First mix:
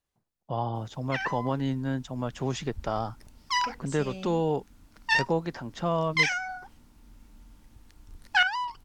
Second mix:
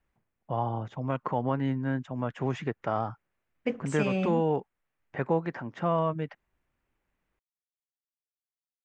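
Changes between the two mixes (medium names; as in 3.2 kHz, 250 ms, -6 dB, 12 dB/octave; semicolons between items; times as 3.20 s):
second voice +12.0 dB; background: muted; master: add resonant high shelf 3.1 kHz -12 dB, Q 1.5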